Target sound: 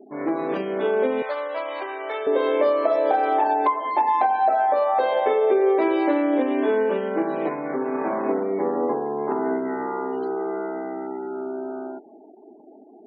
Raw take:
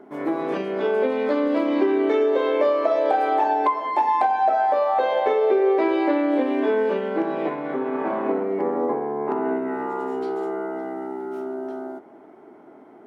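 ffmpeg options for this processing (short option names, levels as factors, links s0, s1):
-filter_complex "[0:a]asettb=1/sr,asplit=3[s0][s1][s2];[s0]atrim=end=1.224[s3];[s1]atrim=start=1.22:end=2.27,asetpts=PTS-STARTPTS,afade=t=in:d=0.004:c=qsin,afade=t=out:st=1.046:d=0.004:c=qsin,highpass=f=610:w=0.5412,highpass=f=610:w=1.3066[s4];[s2]atrim=start=2.266[s5];[s3][s4]acrossfade=d=0.004:c1=hsin:c2=qsin[s6];[s6][s5]acrossfade=d=0.004:c1=qsin:c2=hsin,afftfilt=real='re*gte(hypot(re,im),0.01)':imag='im*gte(hypot(re,im),0.01)':win_size=1024:overlap=0.75"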